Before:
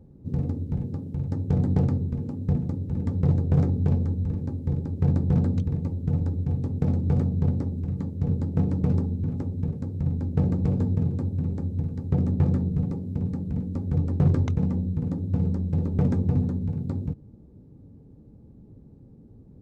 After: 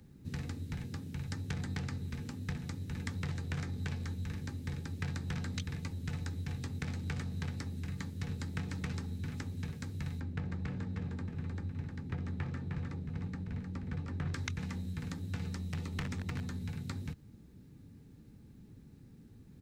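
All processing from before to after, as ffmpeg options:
-filter_complex "[0:a]asettb=1/sr,asplit=3[a][b][c];[a]atrim=end=10.204[d];[b]atrim=start=10.2:end=14.34,asetpts=PTS-STARTPTS,afade=t=in:d=0.004:c=qsin,afade=t=out:st=4.136:d=0.004:c=qsin,lowpass=f=1.2k:p=1,aecho=1:1:308:0.501,atrim=end_sample=182574[e];[c]atrim=start=14.336[f];[d][e]acrossfade=d=0.004:c1=hsin:c2=qsin[g];[g][f]acrossfade=d=0.004:c1=qsin:c2=hsin,asettb=1/sr,asplit=3[h][i][j];[h]atrim=end=15.554[k];[i]atrim=start=15.55:end=16.48,asetpts=PTS-STARTPTS,afade=t=in:d=0.004:c=qsin,afade=t=out:st=0.926:d=0.004:c=qsin,bandreject=f=1.6k:w=6.4,aeval=exprs='0.15*(abs(mod(val(0)/0.15+3,4)-2)-1)':c=same[l];[j]atrim=start=16.476[m];[k][l]acrossfade=d=0.004:c1=hsin:c2=qsin[n];[n][m]acrossfade=d=0.004:c1=qsin:c2=hsin,lowshelf=f=340:g=-9.5,acrossover=split=83|470[o][p][q];[o]acompressor=threshold=-45dB:ratio=4[r];[p]acompressor=threshold=-43dB:ratio=4[s];[q]acompressor=threshold=-47dB:ratio=4[t];[r][s][t]amix=inputs=3:normalize=0,firequalizer=gain_entry='entry(170,0);entry(550,-11);entry(1700,11)':delay=0.05:min_phase=1,volume=2.5dB"

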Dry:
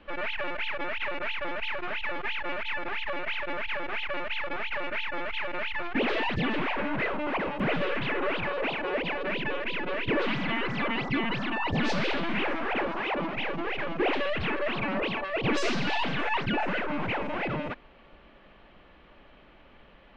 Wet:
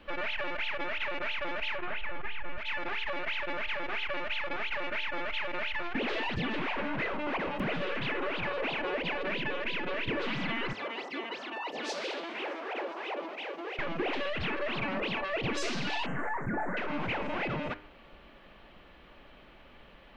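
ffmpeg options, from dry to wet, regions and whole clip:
-filter_complex "[0:a]asettb=1/sr,asplit=3[a][b][c];[a]atrim=end=1.774[d];[b]atrim=start=1.77:end=2.58,asetpts=PTS-STARTPTS,afade=t=in:d=0.004:c=qsin,afade=t=out:st=0.806:d=0.004:c=qsin,lowpass=2.8k,asubboost=boost=11.5:cutoff=180[e];[c]atrim=start=2.576[f];[d][e]acrossfade=d=0.004:c1=hsin:c2=qsin[g];[g][f]acrossfade=d=0.004:c1=qsin:c2=hsin,asettb=1/sr,asplit=3[h][i][j];[h]atrim=end=10.734[k];[i]atrim=start=10.73:end=13.79,asetpts=PTS-STARTPTS,afade=t=in:d=0.004:c=qsin,afade=t=out:st=3.056:d=0.004:c=qsin,highpass=f=380:w=0.5412,highpass=f=380:w=1.3066,equalizer=f=1.9k:w=0.38:g=-9.5[l];[j]atrim=start=13.786[m];[k][l]acrossfade=d=0.004:c1=hsin:c2=qsin[n];[n][m]acrossfade=d=0.004:c1=qsin:c2=hsin,asettb=1/sr,asplit=3[o][p][q];[o]atrim=end=16.064[r];[p]atrim=start=16.06:end=16.77,asetpts=PTS-STARTPTS,afade=t=in:d=0.004:c=qsin,afade=t=out:st=0.706:d=0.004:c=qsin,asuperstop=centerf=3800:order=12:qfactor=0.77,asplit=2[s][t];[t]adelay=22,volume=-12.5dB[u];[s][u]amix=inputs=2:normalize=0,atrim=end_sample=31311[v];[q]atrim=start=16.766[w];[r][v]acrossfade=d=0.004:c1=hsin:c2=qsin[x];[x][w]acrossfade=d=0.004:c1=qsin:c2=hsin,acompressor=threshold=-29dB:ratio=6,highshelf=f=5.5k:g=10,bandreject=f=101:t=h:w=4,bandreject=f=202:t=h:w=4,bandreject=f=303:t=h:w=4,bandreject=f=404:t=h:w=4,bandreject=f=505:t=h:w=4,bandreject=f=606:t=h:w=4,bandreject=f=707:t=h:w=4,bandreject=f=808:t=h:w=4,bandreject=f=909:t=h:w=4,bandreject=f=1.01k:t=h:w=4,bandreject=f=1.111k:t=h:w=4,bandreject=f=1.212k:t=h:w=4,bandreject=f=1.313k:t=h:w=4,bandreject=f=1.414k:t=h:w=4,bandreject=f=1.515k:t=h:w=4,bandreject=f=1.616k:t=h:w=4,bandreject=f=1.717k:t=h:w=4,bandreject=f=1.818k:t=h:w=4,bandreject=f=1.919k:t=h:w=4,bandreject=f=2.02k:t=h:w=4,bandreject=f=2.121k:t=h:w=4,bandreject=f=2.222k:t=h:w=4,bandreject=f=2.323k:t=h:w=4,bandreject=f=2.424k:t=h:w=4,bandreject=f=2.525k:t=h:w=4,bandreject=f=2.626k:t=h:w=4,bandreject=f=2.727k:t=h:w=4,bandreject=f=2.828k:t=h:w=4,bandreject=f=2.929k:t=h:w=4,bandreject=f=3.03k:t=h:w=4,bandreject=f=3.131k:t=h:w=4,bandreject=f=3.232k:t=h:w=4"

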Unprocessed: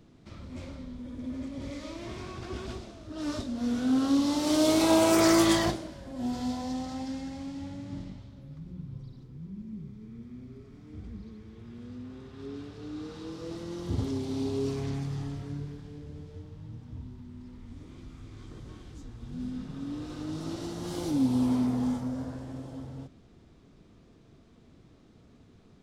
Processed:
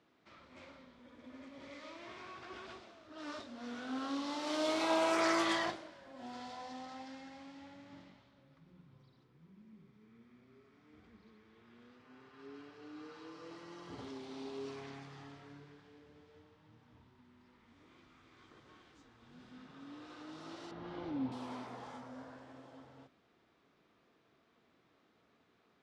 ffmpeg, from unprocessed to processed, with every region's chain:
-filter_complex "[0:a]asettb=1/sr,asplit=3[a][b][c];[a]atrim=end=11.994[d];[b]atrim=start=11.99:end=14.01,asetpts=PTS-STARTPTS,afade=t=in:d=0.004:c=qsin,afade=t=out:st=2.016:d=0.004:c=qsin,bandreject=f=3.6k:w=8.1,aecho=1:1:6.8:0.4,atrim=end_sample=89082[e];[c]atrim=start=14.006[f];[d][e]acrossfade=d=0.004:c1=hsin:c2=qsin[g];[g][f]acrossfade=d=0.004:c1=qsin:c2=hsin,asettb=1/sr,asplit=3[h][i][j];[h]atrim=end=20.714[k];[i]atrim=start=20.71:end=21.32,asetpts=PTS-STARTPTS,afade=t=in:d=0.004:c=qsin,afade=t=out:st=0.606:d=0.004:c=qsin,lowpass=3.5k,aemphasis=mode=reproduction:type=bsi[l];[j]atrim=start=21.316[m];[k][l]acrossfade=d=0.004:c1=hsin:c2=qsin[n];[n][m]acrossfade=d=0.004:c1=qsin:c2=hsin,lowpass=1.6k,aderivative,bandreject=f=50:t=h:w=6,bandreject=f=100:t=h:w=6,bandreject=f=150:t=h:w=6,bandreject=f=200:t=h:w=6,bandreject=f=250:t=h:w=6,volume=13dB"

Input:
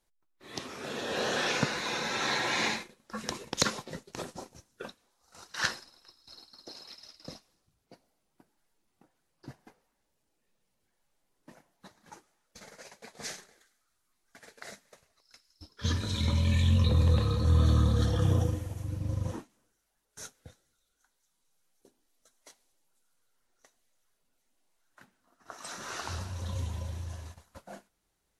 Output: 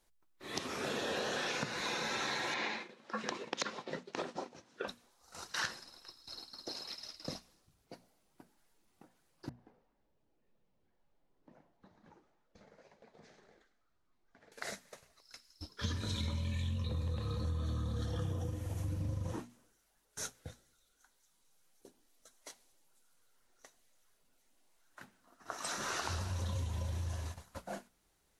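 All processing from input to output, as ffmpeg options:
-filter_complex "[0:a]asettb=1/sr,asplit=3[a][b][c];[a]atrim=end=2.544[d];[b]atrim=start=2.54:end=4.88,asetpts=PTS-STARTPTS,afade=t=in:d=0.004:c=qsin,afade=t=out:st=2.336:d=0.004:c=qsin,acompressor=mode=upward:threshold=-51dB:ratio=2.5:attack=3.2:release=140:knee=2.83:detection=peak,highpass=240,lowpass=3.8k[e];[c]atrim=start=4.876[f];[d][e]acrossfade=d=0.004:c1=hsin:c2=qsin[g];[g][f]acrossfade=d=0.004:c1=qsin:c2=hsin,asettb=1/sr,asplit=3[h][i][j];[h]atrim=end=9.494[k];[i]atrim=start=9.49:end=14.52,asetpts=PTS-STARTPTS,afade=t=in:d=0.004:c=qsin,afade=t=out:st=5.026:d=0.004:c=qsin,lowpass=2.6k,acompressor=threshold=-57dB:ratio=10:attack=3.2:release=140:knee=1:detection=peak,equalizer=f=1.9k:t=o:w=2.2:g=-8[l];[j]atrim=start=14.516[m];[k][l]acrossfade=d=0.004:c1=hsin:c2=qsin[n];[n][m]acrossfade=d=0.004:c1=qsin:c2=hsin,bandreject=f=60:t=h:w=6,bandreject=f=120:t=h:w=6,bandreject=f=180:t=h:w=6,bandreject=f=240:t=h:w=6,acompressor=threshold=-37dB:ratio=12,volume=3.5dB"

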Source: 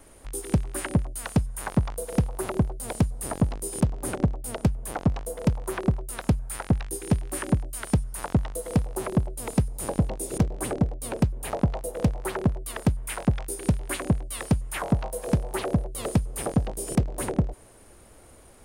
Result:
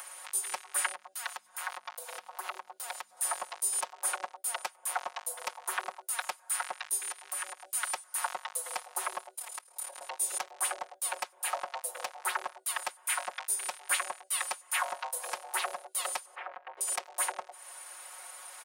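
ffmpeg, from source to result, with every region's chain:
-filter_complex "[0:a]asettb=1/sr,asplit=3[a][b][c];[a]atrim=end=0.924[d];[b]atrim=start=0.92:end=3.17,asetpts=PTS-STARTPTS,afade=t=in:d=0.004:c=qsin,afade=t=out:st=2.246:d=0.004:c=qsin,equalizer=f=9.7k:t=o:w=0.91:g=-9.5,bandreject=f=50:t=h:w=6,bandreject=f=100:t=h:w=6,bandreject=f=150:t=h:w=6,bandreject=f=200:t=h:w=6,bandreject=f=250:t=h:w=6,bandreject=f=300:t=h:w=6,acompressor=threshold=-30dB:ratio=10:attack=3.2:release=140:knee=1:detection=peak[e];[c]atrim=start=3.166[f];[d][e]acrossfade=d=0.004:c1=hsin:c2=qsin[g];[g][f]acrossfade=d=0.004:c1=qsin:c2=hsin,asettb=1/sr,asplit=3[h][i][j];[h]atrim=end=7.114[k];[i]atrim=start=7.11:end=7.65,asetpts=PTS-STARTPTS,afade=t=in:d=0.004:c=qsin,afade=t=out:st=0.536:d=0.004:c=qsin,highpass=f=260:w=0.5412,highpass=f=260:w=1.3066,acompressor=threshold=-33dB:ratio=10:attack=3.2:release=140:knee=1:detection=peak[l];[j]atrim=start=7.646[m];[k][l]acrossfade=d=0.004:c1=hsin:c2=qsin[n];[n][m]acrossfade=d=0.004:c1=qsin:c2=hsin,asettb=1/sr,asplit=3[o][p][q];[o]atrim=end=9.364[r];[p]atrim=start=9.36:end=10.01,asetpts=PTS-STARTPTS,afade=t=in:d=0.004:c=qsin,afade=t=out:st=0.646:d=0.004:c=qsin,highpass=87,acompressor=threshold=-34dB:ratio=3:attack=3.2:release=140:knee=1:detection=peak,tremolo=f=37:d=0.857[s];[q]atrim=start=10.006[t];[r][s]acrossfade=d=0.004:c1=hsin:c2=qsin[u];[u][t]acrossfade=d=0.004:c1=qsin:c2=hsin,asettb=1/sr,asplit=3[v][w][x];[v]atrim=end=16.354[y];[w]atrim=start=16.35:end=16.81,asetpts=PTS-STARTPTS,afade=t=in:d=0.004:c=qsin,afade=t=out:st=0.456:d=0.004:c=qsin,lowpass=f=2.3k:w=0.5412,lowpass=f=2.3k:w=1.3066,acompressor=threshold=-32dB:ratio=4:attack=3.2:release=140:knee=1:detection=peak[z];[x]atrim=start=16.806[aa];[y][z]acrossfade=d=0.004:c1=hsin:c2=qsin[ab];[ab][aa]acrossfade=d=0.004:c1=qsin:c2=hsin,highpass=f=830:w=0.5412,highpass=f=830:w=1.3066,aecho=1:1:5.5:0.89,acompressor=mode=upward:threshold=-38dB:ratio=2.5"

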